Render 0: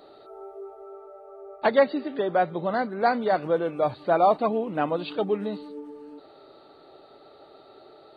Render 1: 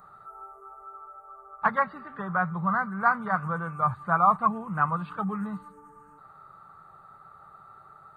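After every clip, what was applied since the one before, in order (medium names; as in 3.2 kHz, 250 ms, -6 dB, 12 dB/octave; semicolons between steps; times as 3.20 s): FFT filter 190 Hz 0 dB, 280 Hz -25 dB, 620 Hz -20 dB, 1.2 kHz +6 dB, 2.9 kHz -22 dB, 4.4 kHz -28 dB, 6.8 kHz 0 dB; trim +6 dB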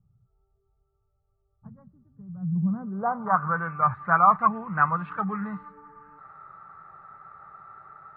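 low-pass sweep 110 Hz -> 2 kHz, 2.33–3.61 s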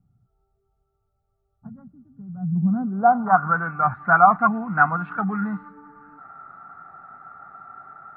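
small resonant body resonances 260/720/1400 Hz, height 15 dB, ringing for 40 ms; trim -1.5 dB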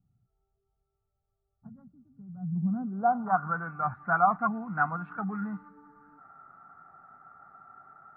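treble shelf 2.3 kHz -8 dB; trim -8 dB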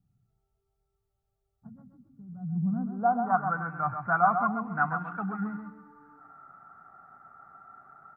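feedback delay 132 ms, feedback 26%, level -7 dB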